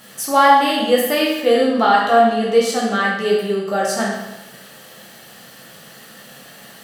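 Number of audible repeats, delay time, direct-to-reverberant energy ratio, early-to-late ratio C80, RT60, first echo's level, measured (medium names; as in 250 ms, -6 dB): no echo, no echo, -4.5 dB, 4.0 dB, 1.0 s, no echo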